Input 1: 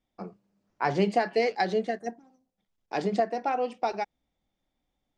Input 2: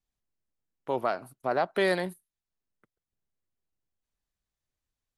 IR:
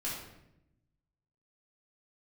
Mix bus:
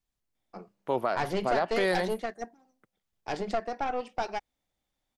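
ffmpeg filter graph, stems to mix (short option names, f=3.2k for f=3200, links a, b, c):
-filter_complex "[0:a]lowshelf=f=390:g=-8.5,acontrast=64,aeval=exprs='(tanh(7.94*val(0)+0.65)-tanh(0.65))/7.94':c=same,adelay=350,volume=-4dB[a];[1:a]volume=1.5dB[b];[a][b]amix=inputs=2:normalize=0,alimiter=limit=-16.5dB:level=0:latency=1:release=15"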